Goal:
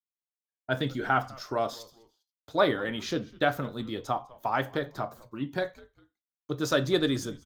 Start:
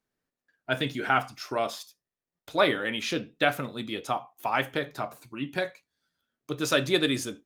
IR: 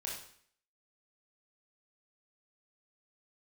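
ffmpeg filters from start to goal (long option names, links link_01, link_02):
-filter_complex "[0:a]agate=range=-33dB:threshold=-44dB:ratio=3:detection=peak,equalizer=frequency=100:width_type=o:width=0.67:gain=6,equalizer=frequency=2500:width_type=o:width=0.67:gain=-11,equalizer=frequency=10000:width_type=o:width=0.67:gain=-11,asplit=3[link_01][link_02][link_03];[link_02]adelay=201,afreqshift=-120,volume=-22.5dB[link_04];[link_03]adelay=402,afreqshift=-240,volume=-31.4dB[link_05];[link_01][link_04][link_05]amix=inputs=3:normalize=0"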